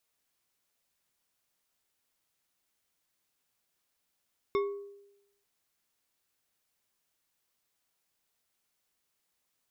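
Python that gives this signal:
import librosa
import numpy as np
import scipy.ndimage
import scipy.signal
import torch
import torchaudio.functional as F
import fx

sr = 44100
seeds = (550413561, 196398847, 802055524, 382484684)

y = fx.strike_glass(sr, length_s=0.89, level_db=-24.0, body='bar', hz=402.0, decay_s=0.91, tilt_db=6.5, modes=5)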